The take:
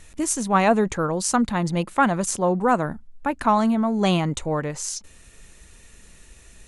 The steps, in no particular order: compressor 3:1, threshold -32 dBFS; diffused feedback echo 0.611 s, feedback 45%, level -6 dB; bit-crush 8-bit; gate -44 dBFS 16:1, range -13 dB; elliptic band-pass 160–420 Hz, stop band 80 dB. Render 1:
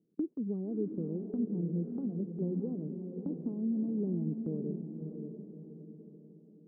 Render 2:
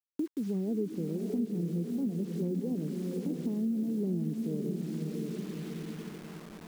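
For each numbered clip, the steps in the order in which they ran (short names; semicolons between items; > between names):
bit-crush > compressor > elliptic band-pass > gate > diffused feedback echo; elliptic band-pass > gate > diffused feedback echo > bit-crush > compressor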